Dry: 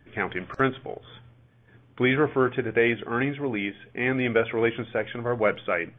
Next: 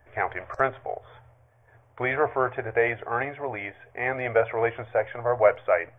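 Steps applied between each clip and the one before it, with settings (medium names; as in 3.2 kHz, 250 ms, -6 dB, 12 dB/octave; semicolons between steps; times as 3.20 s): FFT filter 110 Hz 0 dB, 170 Hz -21 dB, 330 Hz -11 dB, 640 Hz +9 dB, 970 Hz +5 dB, 1.4 kHz -1 dB, 2 kHz 0 dB, 3.3 kHz -14 dB, 5.1 kHz 0 dB, 8.3 kHz +5 dB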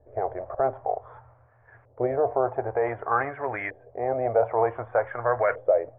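peak limiter -15 dBFS, peak gain reduction 8.5 dB; LFO low-pass saw up 0.54 Hz 490–1800 Hz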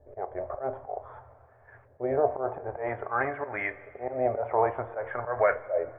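slow attack 146 ms; two-slope reverb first 0.25 s, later 2.8 s, from -18 dB, DRR 9.5 dB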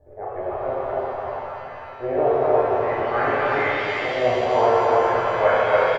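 delay 289 ms -3.5 dB; pitch-shifted reverb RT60 2.9 s, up +7 st, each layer -8 dB, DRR -6.5 dB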